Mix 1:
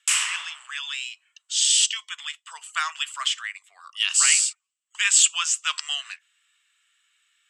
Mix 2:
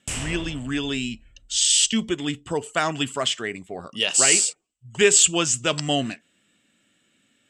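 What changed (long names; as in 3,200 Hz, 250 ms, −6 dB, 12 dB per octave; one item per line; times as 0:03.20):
background −10.0 dB
master: remove elliptic high-pass filter 1,100 Hz, stop band 80 dB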